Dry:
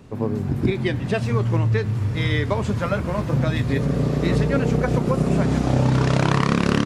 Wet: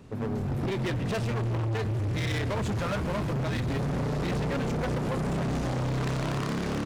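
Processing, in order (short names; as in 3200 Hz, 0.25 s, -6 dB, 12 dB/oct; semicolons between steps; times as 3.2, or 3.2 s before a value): AGC gain up to 5 dB; limiter -9 dBFS, peak gain reduction 5.5 dB; hard clip -23 dBFS, distortion -6 dB; gain -4 dB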